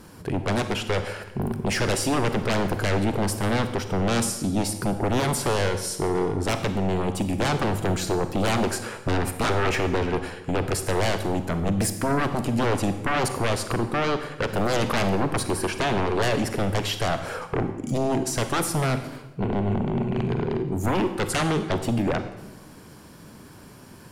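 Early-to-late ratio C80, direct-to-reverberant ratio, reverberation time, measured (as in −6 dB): 11.5 dB, 9.0 dB, 1.1 s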